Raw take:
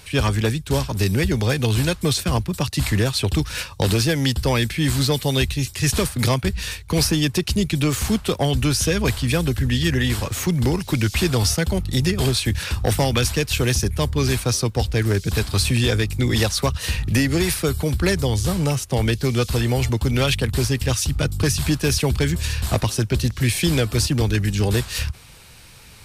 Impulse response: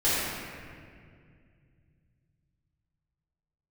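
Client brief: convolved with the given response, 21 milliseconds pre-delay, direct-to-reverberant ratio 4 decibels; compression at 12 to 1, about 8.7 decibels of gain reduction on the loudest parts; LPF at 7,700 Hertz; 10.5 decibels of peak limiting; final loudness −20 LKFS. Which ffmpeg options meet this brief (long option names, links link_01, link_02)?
-filter_complex "[0:a]lowpass=7700,acompressor=threshold=-24dB:ratio=12,alimiter=level_in=0.5dB:limit=-24dB:level=0:latency=1,volume=-0.5dB,asplit=2[link_01][link_02];[1:a]atrim=start_sample=2205,adelay=21[link_03];[link_02][link_03]afir=irnorm=-1:irlink=0,volume=-18.5dB[link_04];[link_01][link_04]amix=inputs=2:normalize=0,volume=10.5dB"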